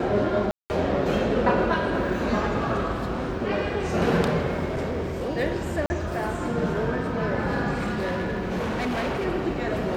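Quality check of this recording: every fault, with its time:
0.51–0.7 gap 0.189 s
4.65–5.3 clipped -24.5 dBFS
5.86–5.9 gap 40 ms
7.73–9.27 clipped -23.5 dBFS

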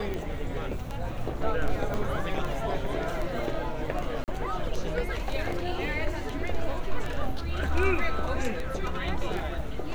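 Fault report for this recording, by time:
tick 78 rpm -21 dBFS
1.94 pop
4.24–4.28 gap 38 ms

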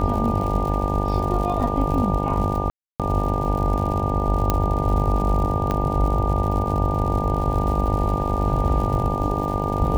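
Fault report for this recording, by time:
buzz 50 Hz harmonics 19 -25 dBFS
crackle 120/s -29 dBFS
tone 1200 Hz -27 dBFS
2.7–3 gap 0.297 s
4.5 pop -5 dBFS
5.71 pop -11 dBFS

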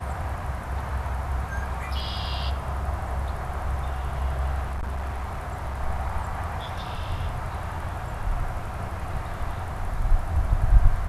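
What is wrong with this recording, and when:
4.63–5.81 clipped -26 dBFS

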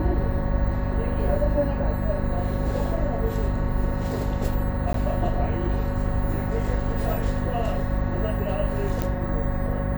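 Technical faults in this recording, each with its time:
hum 50 Hz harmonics 5 -28 dBFS
4.93–4.94 gap
9.02 pop -11 dBFS

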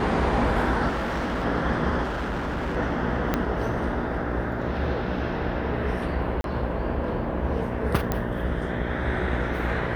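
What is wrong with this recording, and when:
buzz 60 Hz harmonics 11 -31 dBFS
0.88–1.45 clipped -24 dBFS
2.03–2.77 clipped -25 dBFS
3.34 pop -9 dBFS
6.41–6.44 gap 32 ms
8.12 pop -11 dBFS

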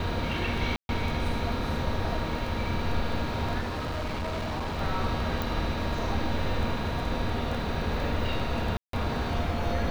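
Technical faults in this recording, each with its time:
crackle 11/s
0.76–0.89 gap 0.131 s
3.59–4.79 clipped -28.5 dBFS
5.42 pop
8.77–8.93 gap 0.163 s

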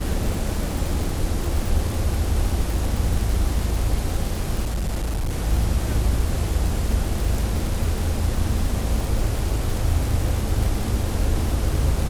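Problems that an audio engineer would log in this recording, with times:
crackle 95/s -25 dBFS
4.63–5.36 clipped -20.5 dBFS

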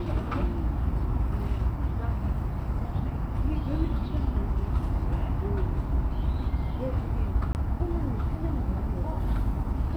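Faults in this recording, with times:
7.53–7.55 gap 19 ms

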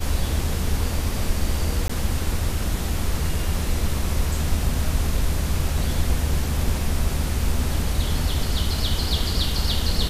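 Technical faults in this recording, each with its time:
1.88–1.9 gap 15 ms

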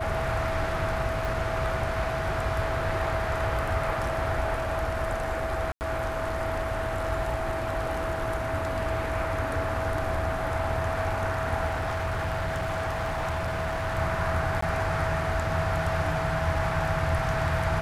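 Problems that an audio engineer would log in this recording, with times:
tone 650 Hz -31 dBFS
1.25 pop
5.72–5.81 gap 89 ms
11.66–13.98 clipped -25.5 dBFS
14.61–14.62 gap 14 ms

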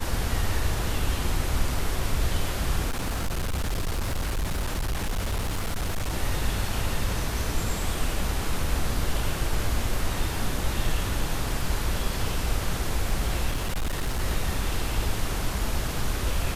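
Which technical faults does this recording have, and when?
2.88–6.14 clipped -23.5 dBFS
13.5–14.21 clipped -23 dBFS

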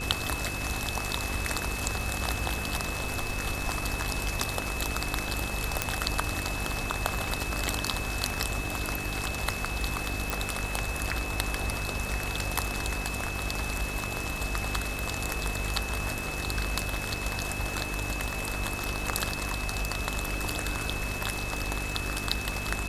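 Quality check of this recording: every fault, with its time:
buzz 50 Hz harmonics 9 -37 dBFS
crackle 92/s -39 dBFS
tone 2600 Hz -36 dBFS
5.82 pop -8 dBFS
10.3 pop

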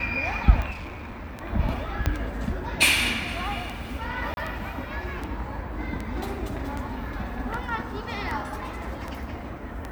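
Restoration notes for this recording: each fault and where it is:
tick 78 rpm -19 dBFS
0.71–1.43 clipped -33 dBFS
2.06 pop -9 dBFS
4.34–4.37 gap 31 ms

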